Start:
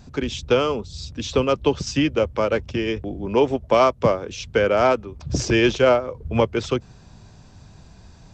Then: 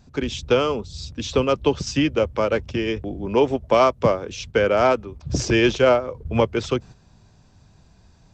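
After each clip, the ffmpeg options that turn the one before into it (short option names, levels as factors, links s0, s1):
-af "agate=range=0.447:threshold=0.0126:ratio=16:detection=peak"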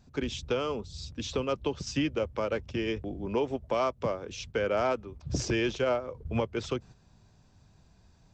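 -af "alimiter=limit=0.266:level=0:latency=1:release=293,volume=0.447"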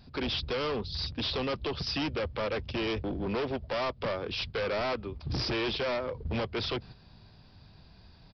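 -af "highshelf=f=3600:g=11.5,aresample=11025,asoftclip=type=hard:threshold=0.02,aresample=44100,volume=1.78"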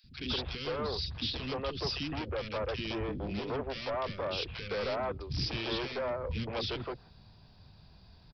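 -filter_complex "[0:a]acrossover=split=320|1900[s0][s1][s2];[s0]adelay=40[s3];[s1]adelay=160[s4];[s3][s4][s2]amix=inputs=3:normalize=0,volume=0.841"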